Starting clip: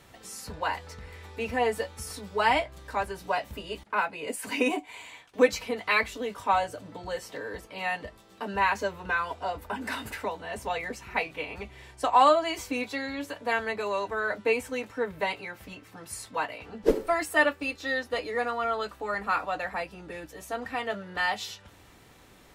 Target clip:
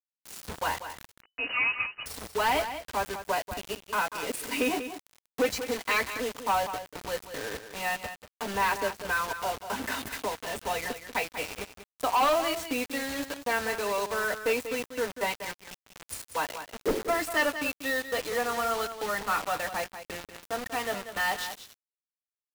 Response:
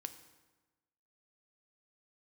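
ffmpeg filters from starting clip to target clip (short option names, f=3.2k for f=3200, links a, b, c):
-filter_complex "[0:a]bandreject=f=2.2k:w=25,acrusher=bits=5:mode=log:mix=0:aa=0.000001,asoftclip=type=tanh:threshold=-19.5dB,acrusher=bits=5:mix=0:aa=0.000001,aecho=1:1:190:0.299,asettb=1/sr,asplit=3[a][b][c];[a]atrim=end=1.214[d];[b]atrim=start=1.21:end=2.06,asetpts=PTS-STARTPTS,afade=t=in:d=0.004:c=qsin,afade=t=out:st=0.846:d=0.004:c=qsin,lowpass=f=2.6k:t=q:w=0.5098,lowpass=f=2.6k:t=q:w=0.6013,lowpass=f=2.6k:t=q:w=0.9,lowpass=f=2.6k:t=q:w=2.563,afreqshift=-3000[e];[c]atrim=start=2.056[f];[d][e]acrossfade=d=0.004:c1=hsin:c2=qsin[g];[g][f]acrossfade=d=0.004:c1=qsin:c2=hsin"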